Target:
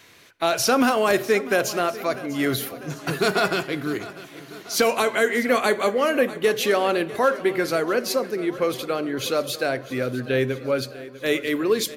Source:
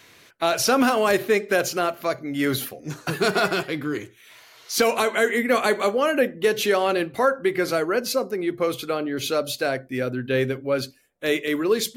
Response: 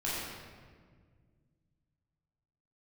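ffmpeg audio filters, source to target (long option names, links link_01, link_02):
-filter_complex "[0:a]aecho=1:1:647|1294|1941|2588|3235|3882:0.141|0.0848|0.0509|0.0305|0.0183|0.011,asplit=2[link_01][link_02];[1:a]atrim=start_sample=2205,adelay=40[link_03];[link_02][link_03]afir=irnorm=-1:irlink=0,volume=-27.5dB[link_04];[link_01][link_04]amix=inputs=2:normalize=0"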